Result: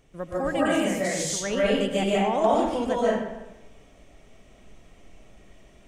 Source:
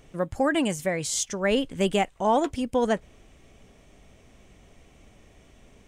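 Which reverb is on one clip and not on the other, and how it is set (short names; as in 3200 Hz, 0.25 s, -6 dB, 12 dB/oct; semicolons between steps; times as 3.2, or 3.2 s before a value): digital reverb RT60 1 s, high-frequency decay 0.7×, pre-delay 0.105 s, DRR -7.5 dB; gain -7 dB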